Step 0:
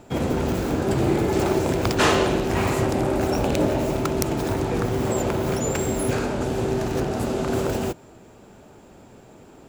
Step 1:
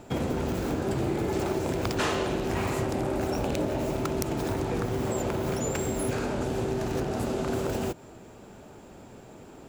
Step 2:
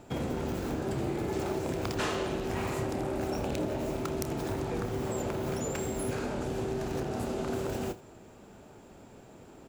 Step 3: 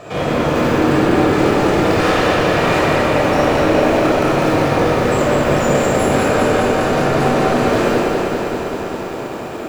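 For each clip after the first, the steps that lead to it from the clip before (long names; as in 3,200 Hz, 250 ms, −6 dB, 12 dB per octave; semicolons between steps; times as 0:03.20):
downward compressor 3 to 1, threshold −27 dBFS, peak gain reduction 9.5 dB
ambience of single reflections 29 ms −12.5 dB, 80 ms −17.5 dB; level −4.5 dB
mid-hump overdrive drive 29 dB, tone 2,400 Hz, clips at −13.5 dBFS; rectangular room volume 2,800 cubic metres, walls mixed, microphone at 5.9 metres; feedback echo at a low word length 198 ms, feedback 80%, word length 7 bits, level −5 dB; level −3.5 dB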